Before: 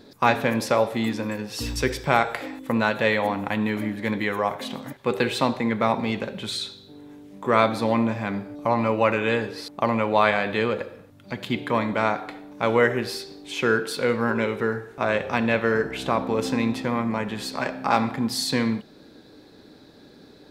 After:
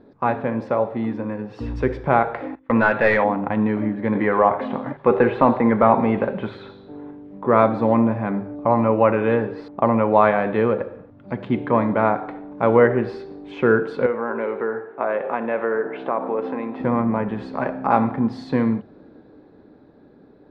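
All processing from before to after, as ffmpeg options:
-filter_complex "[0:a]asettb=1/sr,asplit=3[a][b][c];[a]atrim=end=2.554[d];[b]atrim=start=2.55:end=3.24,asetpts=PTS-STARTPTS,afade=t=in:d=0.004:c=qsin,afade=t=out:st=0.686:d=0.004:c=qsin,equalizer=f=2k:t=o:w=2:g=10,agate=range=-21dB:threshold=-30dB:ratio=16:release=100:detection=peak,aeval=exprs='clip(val(0),-1,0.251)':c=same[e];[c]atrim=start=3.236[f];[d][e]acrossfade=d=0.004:c1=hsin:c2=qsin[g];[g][f]acrossfade=d=0.004:c1=qsin:c2=hsin,asettb=1/sr,asplit=3[h][i][j];[h]atrim=end=4.154[k];[i]atrim=start=4.15:end=7.11,asetpts=PTS-STARTPTS,afade=t=in:d=0.004:c=qsin,afade=t=out:st=2.956:d=0.004:c=qsin,lowshelf=f=170:g=7,asplit=2[l][m];[m]highpass=f=720:p=1,volume=13dB,asoftclip=type=tanh:threshold=-5.5dB[n];[l][n]amix=inputs=2:normalize=0,lowpass=f=3.2k:p=1,volume=-6dB,acrossover=split=2600[o][p];[p]acompressor=threshold=-37dB:ratio=4:attack=1:release=60[q];[o][q]amix=inputs=2:normalize=0[r];[j]atrim=start=7.106[s];[k][r]acrossfade=d=0.004:c1=hsin:c2=qsin[t];[t][s]acrossfade=d=0.004:c1=qsin:c2=hsin,asettb=1/sr,asplit=3[u][v][w];[u]atrim=end=14.064[x];[v]atrim=start=14.06:end=16.8,asetpts=PTS-STARTPTS,afade=t=in:d=0.004:c=qsin,afade=t=out:st=2.736:d=0.004:c=qsin,acompressor=threshold=-24dB:ratio=2:attack=3.2:release=140:knee=1:detection=peak,highpass=370,lowpass=3k[y];[w]atrim=start=16.796[z];[x][y]acrossfade=d=0.004:c1=hsin:c2=qsin[aa];[aa][z]acrossfade=d=0.004:c1=qsin:c2=hsin,lowpass=1.2k,bandreject=f=50:t=h:w=6,bandreject=f=100:t=h:w=6,bandreject=f=150:t=h:w=6,dynaudnorm=f=100:g=31:m=8dB"

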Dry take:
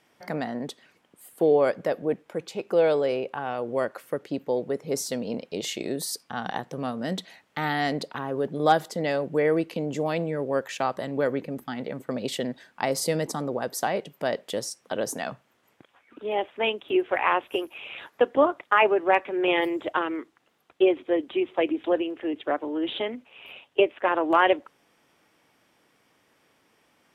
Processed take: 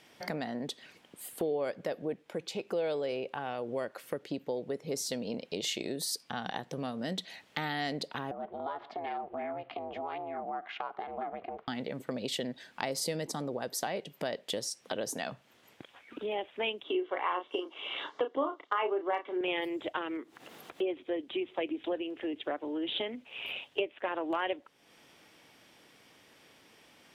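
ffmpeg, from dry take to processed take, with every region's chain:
-filter_complex "[0:a]asettb=1/sr,asplit=3[a][b][c];[a]atrim=end=8.314[d];[b]atrim=start=8.31:end=11.68,asetpts=PTS-STARTPTS,afade=t=in:d=0.004:c=qsin,afade=t=out:st=3.366:d=0.004:c=qsin,acompressor=threshold=-27dB:ratio=4:attack=3.2:release=140:knee=1:detection=peak,aeval=exprs='val(0)*sin(2*PI*200*n/s)':c=same,highpass=300,equalizer=f=320:t=q:w=4:g=-7,equalizer=f=510:t=q:w=4:g=-8,equalizer=f=750:t=q:w=4:g=7,equalizer=f=1.2k:t=q:w=4:g=7,equalizer=f=1.8k:t=q:w=4:g=-4,equalizer=f=2.6k:t=q:w=4:g=-4,lowpass=f=2.7k:w=0.5412,lowpass=f=2.7k:w=1.3066[e];[c]atrim=start=11.676[f];[d][e]acrossfade=d=0.004:c1=hsin:c2=qsin[g];[g][f]acrossfade=d=0.004:c1=qsin:c2=hsin,asettb=1/sr,asplit=3[h][i][j];[h]atrim=end=16.844[k];[i]atrim=start=16.84:end=19.41,asetpts=PTS-STARTPTS,afade=t=in:d=0.004:c=qsin,afade=t=out:st=2.566:d=0.004:c=qsin,asuperstop=centerf=2500:order=4:qfactor=7,highpass=190,equalizer=f=200:t=q:w=4:g=-8,equalizer=f=290:t=q:w=4:g=5,equalizer=f=430:t=q:w=4:g=4,equalizer=f=1.1k:t=q:w=4:g=9,equalizer=f=1.8k:t=q:w=4:g=-4,lowpass=f=6.9k:w=0.5412,lowpass=f=6.9k:w=1.3066,asplit=2[l][m];[m]adelay=33,volume=-8dB[n];[l][n]amix=inputs=2:normalize=0,atrim=end_sample=113337[o];[j]atrim=start=19.406[p];[k][o]acrossfade=d=0.004:c1=hsin:c2=qsin[q];[q][p]acrossfade=d=0.004:c1=qsin:c2=hsin,asettb=1/sr,asplit=3[r][s][t];[r]atrim=end=20.174[u];[s]atrim=start=20.17:end=20.89,asetpts=PTS-STARTPTS,afade=t=in:d=0.004:c=qsin,afade=t=out:st=0.716:d=0.004:c=qsin,highpass=f=160:p=1,equalizer=f=3.8k:w=0.47:g=-6.5,acompressor=mode=upward:threshold=-39dB:ratio=2.5:attack=3.2:release=140:knee=2.83:detection=peak[v];[t]atrim=start=20.886[w];[u][v]acrossfade=d=0.004:c1=hsin:c2=qsin[x];[x][w]acrossfade=d=0.004:c1=qsin:c2=hsin,equalizer=f=1.2k:t=o:w=0.77:g=-3,acompressor=threshold=-42dB:ratio=2.5,equalizer=f=3.8k:t=o:w=1.4:g=5,volume=4dB"

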